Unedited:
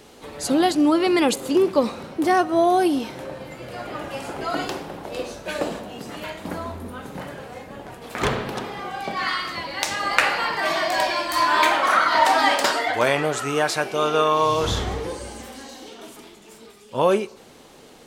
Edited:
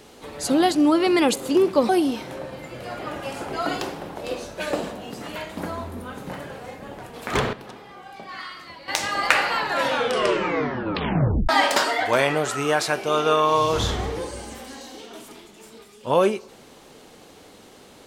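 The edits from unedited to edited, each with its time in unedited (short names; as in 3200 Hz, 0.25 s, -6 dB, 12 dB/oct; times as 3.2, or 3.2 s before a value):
1.89–2.77 cut
8.41–9.76 gain -11 dB
10.41 tape stop 1.96 s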